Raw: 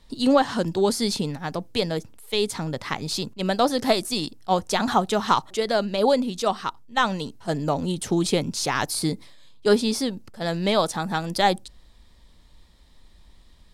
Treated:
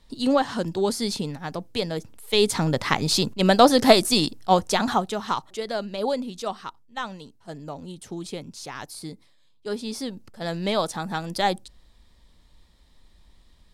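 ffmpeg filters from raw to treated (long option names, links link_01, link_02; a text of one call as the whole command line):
ffmpeg -i in.wav -af "volume=15dB,afade=type=in:start_time=1.95:duration=0.67:silence=0.375837,afade=type=out:start_time=4.17:duration=0.99:silence=0.251189,afade=type=out:start_time=6.37:duration=0.85:silence=0.501187,afade=type=in:start_time=9.71:duration=0.56:silence=0.354813" out.wav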